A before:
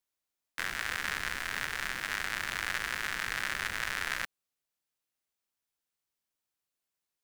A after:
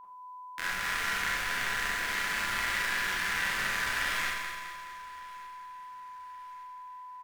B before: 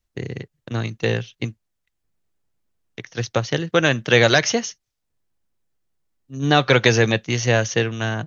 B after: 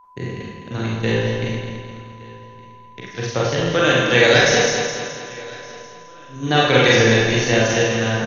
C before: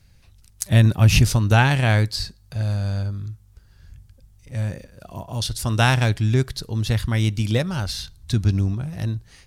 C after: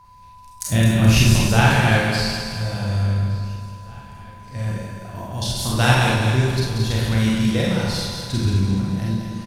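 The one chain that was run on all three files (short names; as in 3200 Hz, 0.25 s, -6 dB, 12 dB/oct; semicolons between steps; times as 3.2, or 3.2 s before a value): regenerating reverse delay 0.106 s, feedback 71%, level -5 dB; on a send: feedback echo 1.166 s, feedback 43%, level -22.5 dB; on the sum: whine 1000 Hz -44 dBFS; Schroeder reverb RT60 0.55 s, combs from 32 ms, DRR -3 dB; gain -3.5 dB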